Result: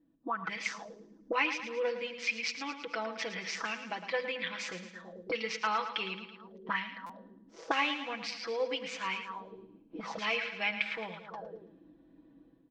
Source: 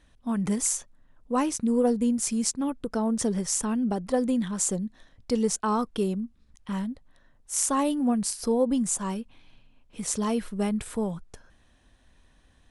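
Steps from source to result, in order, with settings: steep low-pass 5 kHz 36 dB/octave; on a send at -19 dB: reverberation RT60 0.25 s, pre-delay 46 ms; on the sum: level rider gain up to 10.5 dB; peaking EQ 390 Hz +3 dB 2.8 oct; hum notches 50/100/150/200/250 Hz; feedback delay 110 ms, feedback 54%, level -10 dB; auto-wah 260–2300 Hz, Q 5.5, up, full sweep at -16.5 dBFS; treble shelf 3.9 kHz +8.5 dB; comb 6.1 ms, depth 76%; buffer glitch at 7.06 s, samples 256, times 5; trim +3 dB

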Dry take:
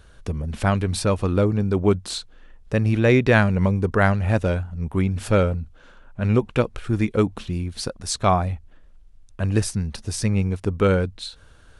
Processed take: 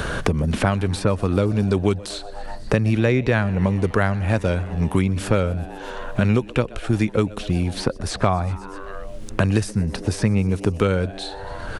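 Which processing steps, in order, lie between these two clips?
frequency-shifting echo 124 ms, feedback 65%, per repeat +100 Hz, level -23 dB; three bands compressed up and down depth 100%

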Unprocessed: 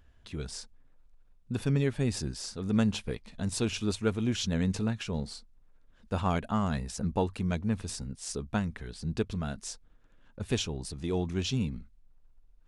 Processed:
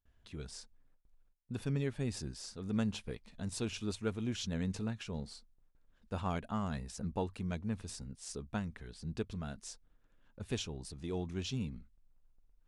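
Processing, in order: gate with hold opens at -52 dBFS; trim -7.5 dB

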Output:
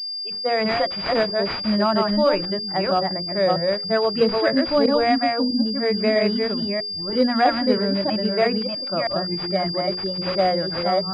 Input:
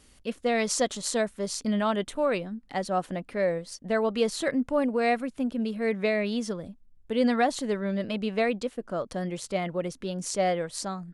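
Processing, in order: chunks repeated in reverse 324 ms, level -2 dB; spectral noise reduction 29 dB; hum notches 60/120/180/240/300/360/420/480/540 Hz; class-D stage that switches slowly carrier 4.8 kHz; trim +6 dB

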